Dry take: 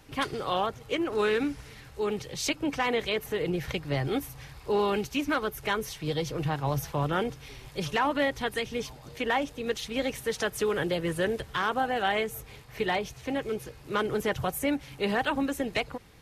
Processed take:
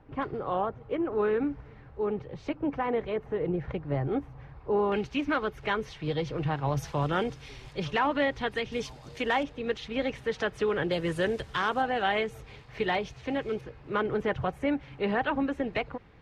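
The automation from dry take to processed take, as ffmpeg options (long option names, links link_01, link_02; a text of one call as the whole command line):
ffmpeg -i in.wav -af "asetnsamples=nb_out_samples=441:pad=0,asendcmd='4.92 lowpass f 3100;6.77 lowpass f 6500;7.73 lowpass f 3700;8.72 lowpass f 7400;9.43 lowpass f 3100;10.91 lowpass f 7200;11.82 lowpass f 4200;13.61 lowpass f 2300',lowpass=1200" out.wav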